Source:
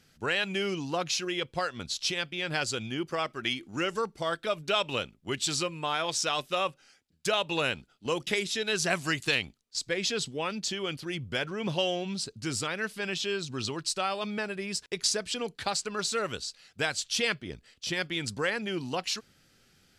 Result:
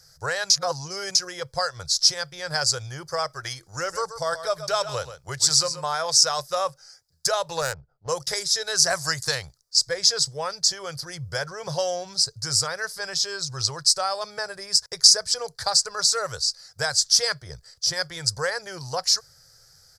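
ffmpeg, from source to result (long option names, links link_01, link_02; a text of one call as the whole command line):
ffmpeg -i in.wav -filter_complex "[0:a]asplit=3[link_01][link_02][link_03];[link_01]afade=type=out:start_time=3.92:duration=0.02[link_04];[link_02]aecho=1:1:131:0.266,afade=type=in:start_time=3.92:duration=0.02,afade=type=out:start_time=5.85:duration=0.02[link_05];[link_03]afade=type=in:start_time=5.85:duration=0.02[link_06];[link_04][link_05][link_06]amix=inputs=3:normalize=0,asettb=1/sr,asplit=3[link_07][link_08][link_09];[link_07]atrim=end=7.614[link_10];[link_08]atrim=start=7.61:end=8.09,asetpts=PTS-STARTPTS,afade=type=in:duration=0.004:curve=qsin,afade=type=out:start_time=0.476:duration=0.004:curve=qsin,adynamicsmooth=sensitivity=3:basefreq=780[link_11];[link_09]atrim=start=8.086[link_12];[link_10][link_11]acrossfade=duration=0.004:curve1=hsin:curve2=qsin[link_13];[link_13][link_12]acrossfade=duration=0.004:curve1=qsin:curve2=hsin,asplit=3[link_14][link_15][link_16];[link_14]atrim=end=0.502[link_17];[link_15]atrim=start=0.498:end=1.152,asetpts=PTS-STARTPTS,areverse[link_18];[link_16]atrim=start=1.148[link_19];[link_17][link_18]acrossfade=duration=0.004:curve1=hsin:curve2=hsin[link_20];[link_20][link_19]acrossfade=duration=0.004:curve1=hsin:curve2=hsin,firequalizer=gain_entry='entry(140,0);entry(220,-29);entry(500,-1);entry(1700,-2);entry(2700,-21);entry(4900,11);entry(7100,5)':delay=0.05:min_phase=1,volume=6dB" out.wav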